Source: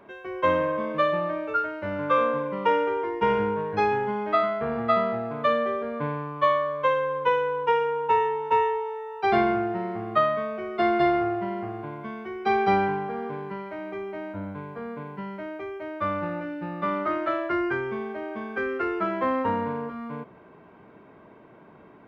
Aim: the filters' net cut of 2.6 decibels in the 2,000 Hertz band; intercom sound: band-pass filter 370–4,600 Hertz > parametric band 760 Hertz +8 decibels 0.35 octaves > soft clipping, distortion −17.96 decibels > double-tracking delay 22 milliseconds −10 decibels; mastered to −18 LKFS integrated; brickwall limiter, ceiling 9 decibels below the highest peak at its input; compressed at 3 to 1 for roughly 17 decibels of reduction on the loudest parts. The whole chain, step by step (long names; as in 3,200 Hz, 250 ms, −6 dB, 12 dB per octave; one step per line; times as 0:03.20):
parametric band 2,000 Hz −3.5 dB
downward compressor 3 to 1, threshold −42 dBFS
brickwall limiter −34 dBFS
band-pass filter 370–4,600 Hz
parametric band 760 Hz +8 dB 0.35 octaves
soft clipping −35.5 dBFS
double-tracking delay 22 ms −10 dB
level +26 dB